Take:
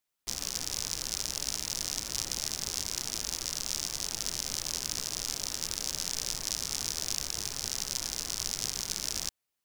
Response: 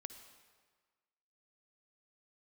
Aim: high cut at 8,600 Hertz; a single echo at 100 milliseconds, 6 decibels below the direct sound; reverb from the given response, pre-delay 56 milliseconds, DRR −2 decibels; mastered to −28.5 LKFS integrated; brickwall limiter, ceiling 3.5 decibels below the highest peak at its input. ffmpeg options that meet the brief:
-filter_complex "[0:a]lowpass=8600,alimiter=limit=-14.5dB:level=0:latency=1,aecho=1:1:100:0.501,asplit=2[link_01][link_02];[1:a]atrim=start_sample=2205,adelay=56[link_03];[link_02][link_03]afir=irnorm=-1:irlink=0,volume=6.5dB[link_04];[link_01][link_04]amix=inputs=2:normalize=0,volume=0.5dB"

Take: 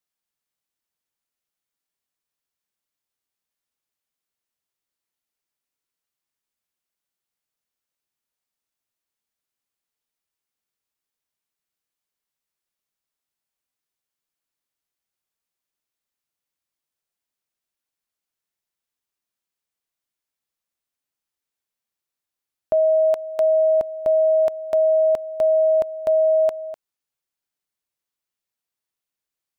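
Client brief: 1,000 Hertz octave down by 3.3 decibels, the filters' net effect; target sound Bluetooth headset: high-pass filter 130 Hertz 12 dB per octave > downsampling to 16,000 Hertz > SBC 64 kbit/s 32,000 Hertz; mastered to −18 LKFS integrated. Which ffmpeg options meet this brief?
ffmpeg -i in.wav -af "highpass=130,equalizer=frequency=1000:width_type=o:gain=-8,aresample=16000,aresample=44100,volume=4dB" -ar 32000 -c:a sbc -b:a 64k out.sbc

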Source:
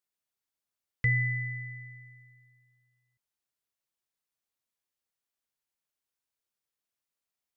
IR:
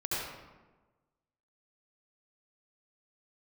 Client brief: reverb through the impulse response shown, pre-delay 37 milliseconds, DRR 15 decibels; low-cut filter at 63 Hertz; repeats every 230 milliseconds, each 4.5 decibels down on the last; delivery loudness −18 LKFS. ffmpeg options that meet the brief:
-filter_complex "[0:a]highpass=63,aecho=1:1:230|460|690|920|1150|1380|1610|1840|2070:0.596|0.357|0.214|0.129|0.0772|0.0463|0.0278|0.0167|0.01,asplit=2[link_01][link_02];[1:a]atrim=start_sample=2205,adelay=37[link_03];[link_02][link_03]afir=irnorm=-1:irlink=0,volume=-21.5dB[link_04];[link_01][link_04]amix=inputs=2:normalize=0,volume=10.5dB"

